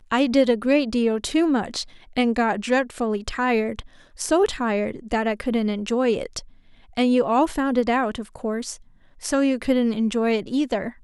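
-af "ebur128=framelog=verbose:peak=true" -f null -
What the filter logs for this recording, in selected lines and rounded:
Integrated loudness:
  I:         -22.5 LUFS
  Threshold: -32.9 LUFS
Loudness range:
  LRA:         1.9 LU
  Threshold: -43.3 LUFS
  LRA low:   -24.2 LUFS
  LRA high:  -22.4 LUFS
True peak:
  Peak:       -6.2 dBFS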